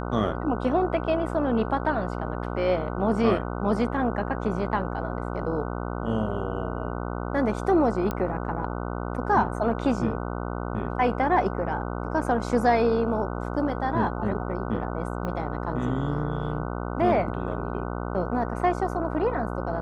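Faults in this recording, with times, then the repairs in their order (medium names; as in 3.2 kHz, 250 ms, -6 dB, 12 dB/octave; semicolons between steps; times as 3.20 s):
buzz 60 Hz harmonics 25 -31 dBFS
8.11 s: pop -16 dBFS
15.25 s: pop -20 dBFS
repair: de-click; de-hum 60 Hz, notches 25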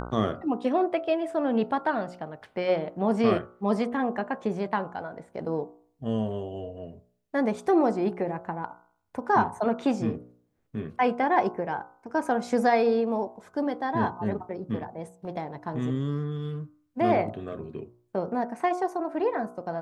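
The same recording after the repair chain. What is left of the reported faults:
15.25 s: pop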